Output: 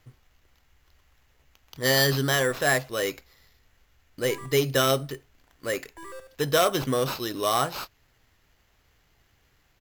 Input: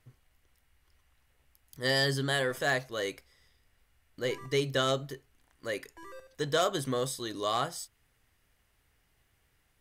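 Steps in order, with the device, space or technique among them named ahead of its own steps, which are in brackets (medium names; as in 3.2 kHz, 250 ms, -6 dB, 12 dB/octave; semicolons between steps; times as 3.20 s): crushed at another speed (playback speed 0.8×; sample-and-hold 6×; playback speed 1.25×); peaking EQ 14 kHz +3 dB 0.49 oct; trim +6 dB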